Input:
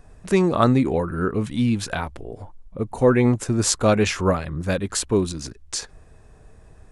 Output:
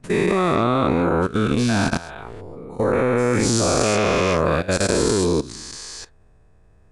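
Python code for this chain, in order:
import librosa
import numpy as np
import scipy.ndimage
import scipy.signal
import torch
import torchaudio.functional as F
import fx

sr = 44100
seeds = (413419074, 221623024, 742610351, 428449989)

y = fx.spec_dilate(x, sr, span_ms=480)
y = fx.high_shelf(y, sr, hz=5900.0, db=-8.5)
y = fx.level_steps(y, sr, step_db=17)
y = F.gain(torch.from_numpy(y), -1.5).numpy()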